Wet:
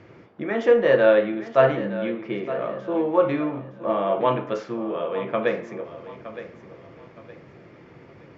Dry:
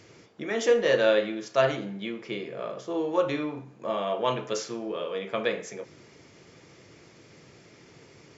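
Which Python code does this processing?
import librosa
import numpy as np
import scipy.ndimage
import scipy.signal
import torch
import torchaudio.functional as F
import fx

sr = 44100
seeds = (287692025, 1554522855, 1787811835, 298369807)

p1 = scipy.signal.sosfilt(scipy.signal.butter(2, 1800.0, 'lowpass', fs=sr, output='sos'), x)
p2 = fx.notch(p1, sr, hz=440.0, q=12.0)
p3 = p2 + fx.echo_feedback(p2, sr, ms=916, feedback_pct=34, wet_db=-13.5, dry=0)
y = p3 * librosa.db_to_amplitude(6.0)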